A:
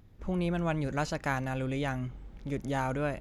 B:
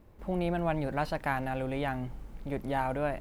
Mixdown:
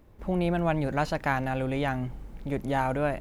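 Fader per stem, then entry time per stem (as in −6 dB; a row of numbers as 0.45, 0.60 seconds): −5.0, +0.5 decibels; 0.00, 0.00 seconds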